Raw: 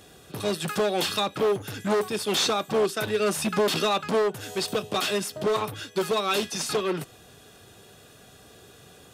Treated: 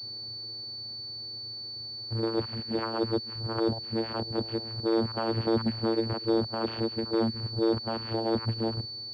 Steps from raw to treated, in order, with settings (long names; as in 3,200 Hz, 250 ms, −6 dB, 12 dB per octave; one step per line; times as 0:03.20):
played backwards from end to start
channel vocoder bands 8, saw 113 Hz
switching amplifier with a slow clock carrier 4,500 Hz
level −2 dB